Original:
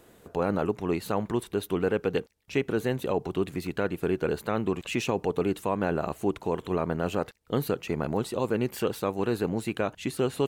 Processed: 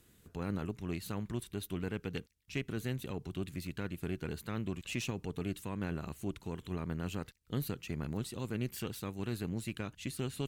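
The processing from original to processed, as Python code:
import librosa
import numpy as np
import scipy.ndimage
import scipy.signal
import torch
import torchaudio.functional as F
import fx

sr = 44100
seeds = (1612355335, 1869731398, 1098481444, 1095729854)

y = fx.tone_stack(x, sr, knobs='6-0-2')
y = fx.cheby_harmonics(y, sr, harmonics=(4,), levels_db=(-21,), full_scale_db=-31.5)
y = F.gain(torch.from_numpy(y), 10.0).numpy()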